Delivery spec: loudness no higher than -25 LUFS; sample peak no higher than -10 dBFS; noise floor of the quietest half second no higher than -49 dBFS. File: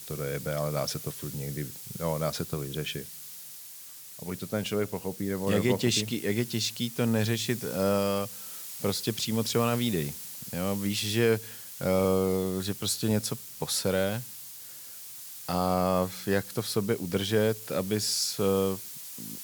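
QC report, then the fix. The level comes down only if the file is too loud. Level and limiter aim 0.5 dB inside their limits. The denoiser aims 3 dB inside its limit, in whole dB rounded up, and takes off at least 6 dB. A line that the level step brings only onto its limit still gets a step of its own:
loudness -29.0 LUFS: pass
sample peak -12.0 dBFS: pass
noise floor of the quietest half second -46 dBFS: fail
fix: noise reduction 6 dB, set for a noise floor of -46 dBFS

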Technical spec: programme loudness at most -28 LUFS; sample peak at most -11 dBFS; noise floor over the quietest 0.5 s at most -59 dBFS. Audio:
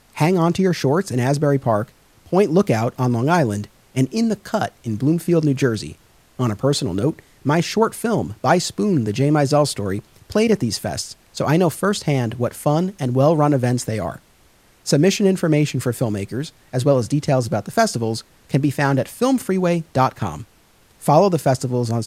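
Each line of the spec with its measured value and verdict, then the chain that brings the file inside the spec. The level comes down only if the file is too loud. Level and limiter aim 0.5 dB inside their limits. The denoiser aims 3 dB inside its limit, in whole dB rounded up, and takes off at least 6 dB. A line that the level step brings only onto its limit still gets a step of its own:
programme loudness -19.5 LUFS: fail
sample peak -1.5 dBFS: fail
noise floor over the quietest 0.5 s -54 dBFS: fail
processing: trim -9 dB; peak limiter -11.5 dBFS

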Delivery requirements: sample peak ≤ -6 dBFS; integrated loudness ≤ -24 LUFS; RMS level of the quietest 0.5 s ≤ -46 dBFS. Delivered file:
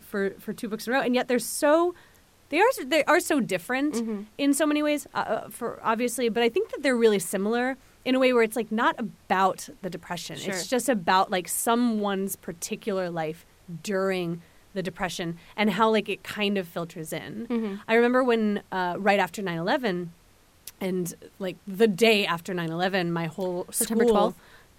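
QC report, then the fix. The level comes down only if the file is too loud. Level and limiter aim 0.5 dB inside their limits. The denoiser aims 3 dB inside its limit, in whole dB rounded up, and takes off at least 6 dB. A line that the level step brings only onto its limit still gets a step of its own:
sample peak -8.0 dBFS: pass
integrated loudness -26.0 LUFS: pass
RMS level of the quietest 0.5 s -58 dBFS: pass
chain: none needed

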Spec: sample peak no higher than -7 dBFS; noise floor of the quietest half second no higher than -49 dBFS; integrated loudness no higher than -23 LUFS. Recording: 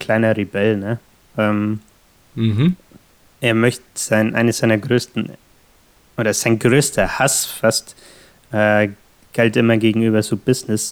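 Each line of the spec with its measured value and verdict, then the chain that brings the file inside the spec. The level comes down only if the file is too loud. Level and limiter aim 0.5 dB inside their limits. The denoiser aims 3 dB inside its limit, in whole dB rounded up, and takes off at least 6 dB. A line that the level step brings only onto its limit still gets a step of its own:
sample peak -2.0 dBFS: fail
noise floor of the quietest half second -53 dBFS: pass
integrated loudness -17.5 LUFS: fail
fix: trim -6 dB

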